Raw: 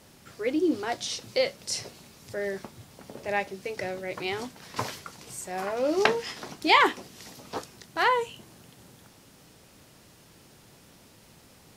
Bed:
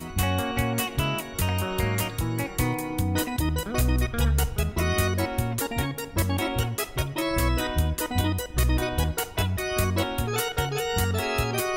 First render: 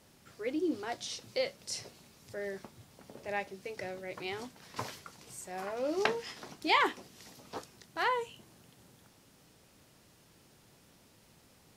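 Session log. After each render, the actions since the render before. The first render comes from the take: trim -7.5 dB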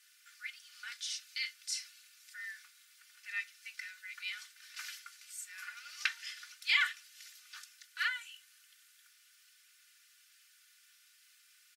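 Chebyshev high-pass 1.4 kHz, order 5; comb 3.4 ms, depth 78%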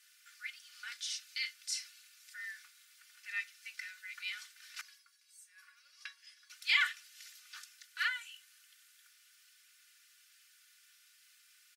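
4.81–6.50 s: feedback comb 560 Hz, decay 0.17 s, mix 90%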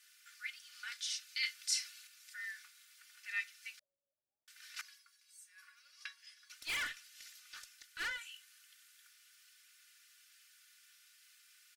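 1.43–2.07 s: gain +3.5 dB; 3.79–4.48 s: steep low-pass 670 Hz 72 dB/octave; 6.52–8.18 s: valve stage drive 35 dB, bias 0.35

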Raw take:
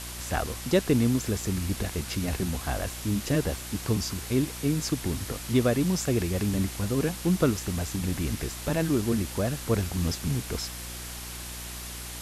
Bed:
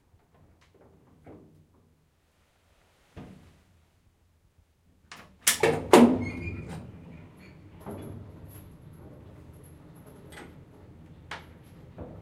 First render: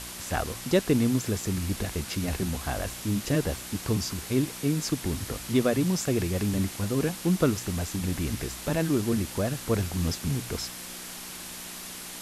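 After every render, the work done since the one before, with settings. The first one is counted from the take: de-hum 60 Hz, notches 2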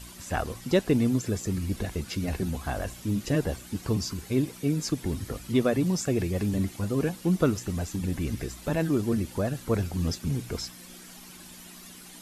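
noise reduction 11 dB, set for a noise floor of -40 dBFS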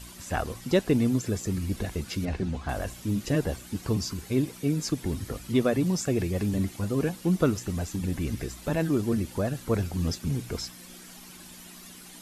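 2.25–2.69 s: distance through air 95 m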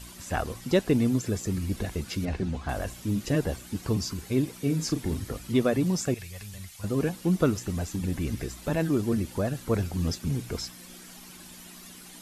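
4.58–5.20 s: doubling 37 ms -8.5 dB; 6.14–6.84 s: amplifier tone stack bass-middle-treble 10-0-10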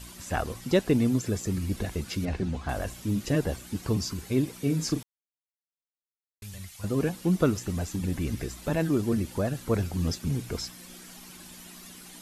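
5.03–6.42 s: mute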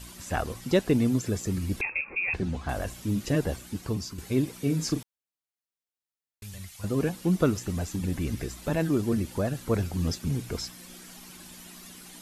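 1.81–2.34 s: frequency inversion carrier 2.6 kHz; 3.55–4.18 s: fade out, to -6.5 dB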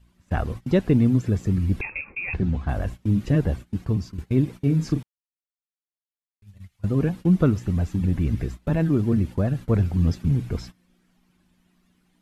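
gate -38 dBFS, range -19 dB; tone controls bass +9 dB, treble -12 dB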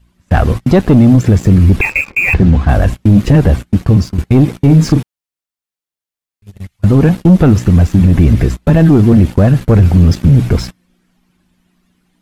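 waveshaping leveller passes 2; loudness maximiser +10 dB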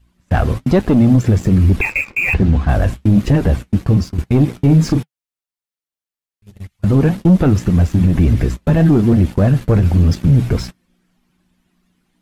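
flange 1.2 Hz, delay 2.3 ms, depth 6.6 ms, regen -70%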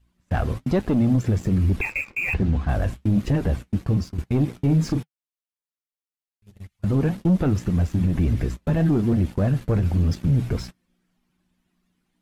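trim -8.5 dB

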